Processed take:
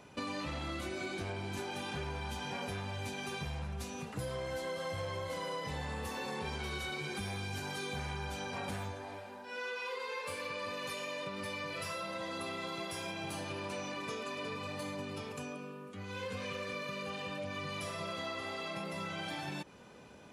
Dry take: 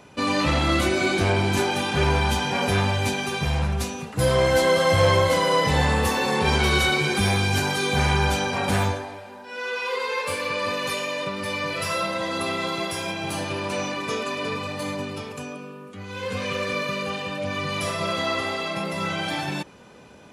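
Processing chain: compression 6:1, threshold -30 dBFS, peak gain reduction 15.5 dB; trim -7 dB

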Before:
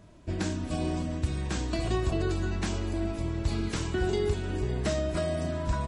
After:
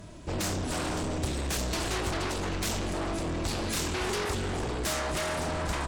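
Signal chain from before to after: in parallel at -7.5 dB: sine folder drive 17 dB, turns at -16 dBFS; on the sum: treble shelf 4.2 kHz +7 dB; trim -7.5 dB

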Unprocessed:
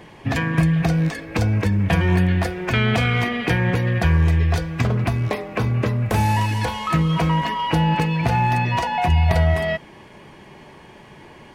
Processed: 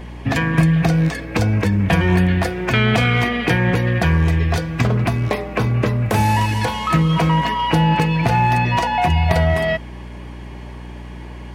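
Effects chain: high-pass 92 Hz; hum 60 Hz, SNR 16 dB; trim +3.5 dB

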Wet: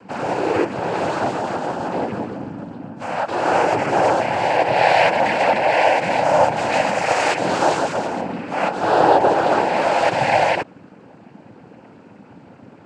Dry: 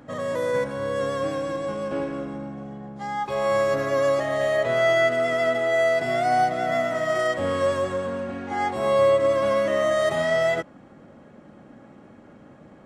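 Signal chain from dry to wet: 6.56–8.21 s: treble shelf 4.6 kHz +11.5 dB; noise-vocoded speech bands 8; trim +5 dB

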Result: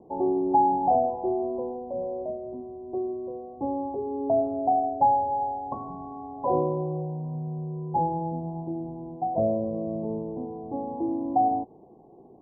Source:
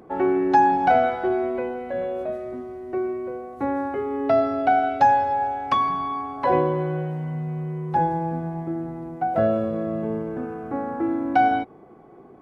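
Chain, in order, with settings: steep low-pass 1 kHz 96 dB/octave; trim -4 dB

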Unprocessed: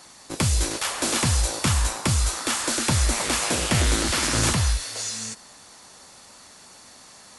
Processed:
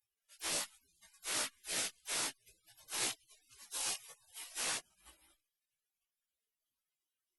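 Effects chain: spectral gate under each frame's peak -30 dB weak; chorus voices 6, 0.59 Hz, delay 17 ms, depth 1.9 ms; Opus 96 kbps 48 kHz

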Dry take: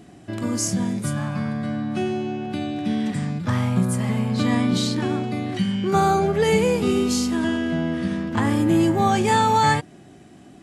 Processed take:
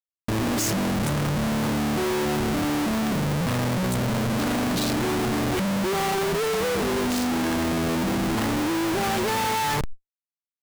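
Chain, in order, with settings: dynamic bell 450 Hz, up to +5 dB, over -30 dBFS, Q 0.76; Schmitt trigger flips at -32.5 dBFS; level flattener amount 100%; trim -5 dB

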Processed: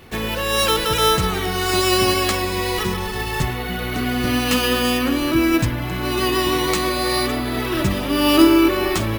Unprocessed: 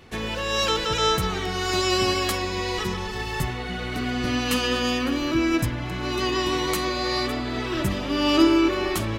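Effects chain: careless resampling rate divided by 3×, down none, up hold; trim +5 dB

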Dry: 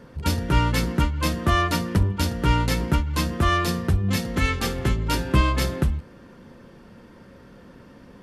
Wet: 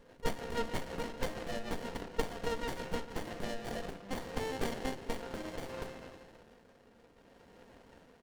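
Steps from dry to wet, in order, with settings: high-pass 910 Hz 12 dB/octave; spring tank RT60 1.6 s, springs 35/57 ms, chirp 65 ms, DRR 6.5 dB; compression 5:1, threshold -29 dBFS, peak gain reduction 9.5 dB; flange 0.83 Hz, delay 6.5 ms, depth 1.8 ms, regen -88%; rotary cabinet horn 6.3 Hz, later 0.65 Hz, at 3.17 s; comb 4.3 ms, depth 57%; sliding maximum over 33 samples; trim +6 dB

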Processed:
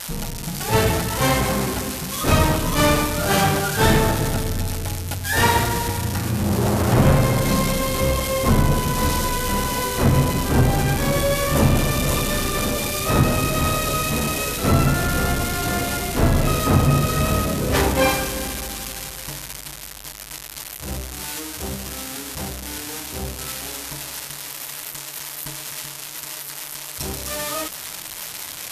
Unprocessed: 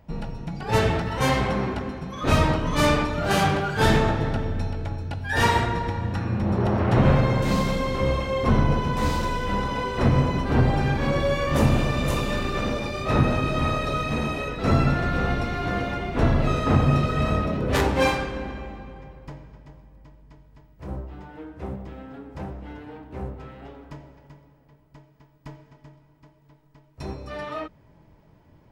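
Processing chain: zero-crossing glitches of -16.5 dBFS; trim +2.5 dB; MP2 192 kbps 48 kHz

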